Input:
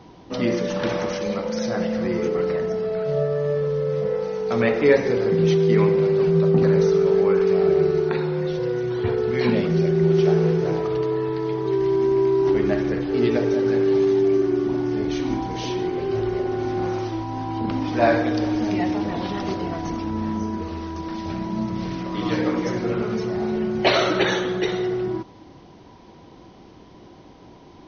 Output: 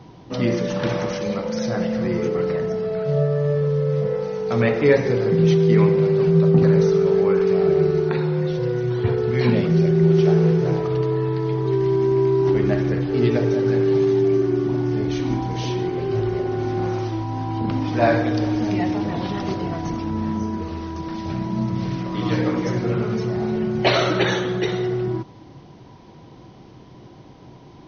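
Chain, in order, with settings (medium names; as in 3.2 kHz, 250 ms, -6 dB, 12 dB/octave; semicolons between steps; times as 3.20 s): peaking EQ 130 Hz +9.5 dB 0.62 oct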